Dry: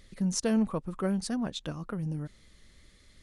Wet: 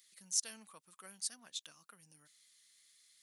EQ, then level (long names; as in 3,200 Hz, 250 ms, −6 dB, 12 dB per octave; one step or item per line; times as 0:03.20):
high-pass filter 130 Hz
first difference
parametric band 440 Hz −7 dB 2.4 octaves
+1.0 dB